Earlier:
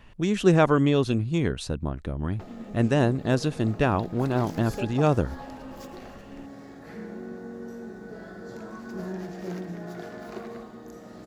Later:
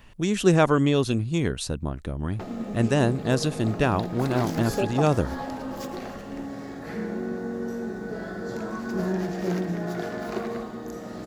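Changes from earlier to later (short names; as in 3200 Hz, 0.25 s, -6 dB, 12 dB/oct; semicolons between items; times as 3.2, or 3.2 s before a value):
speech: add high shelf 6000 Hz +10.5 dB; background +7.5 dB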